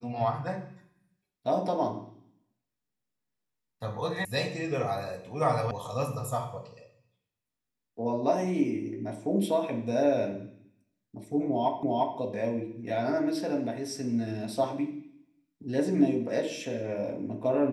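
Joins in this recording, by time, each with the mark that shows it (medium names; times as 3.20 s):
4.25 s: sound stops dead
5.71 s: sound stops dead
11.83 s: repeat of the last 0.35 s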